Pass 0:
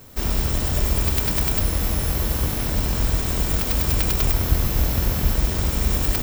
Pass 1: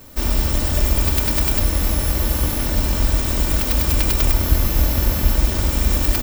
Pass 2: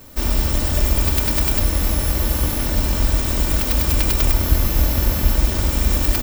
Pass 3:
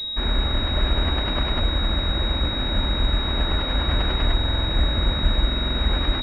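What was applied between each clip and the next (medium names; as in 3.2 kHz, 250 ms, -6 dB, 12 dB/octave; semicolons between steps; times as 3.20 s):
comb 3.4 ms, depth 41%; trim +2 dB
no audible change
buffer glitch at 4.36/5.46 s, samples 2048, times 6; class-D stage that switches slowly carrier 3.8 kHz; trim -3.5 dB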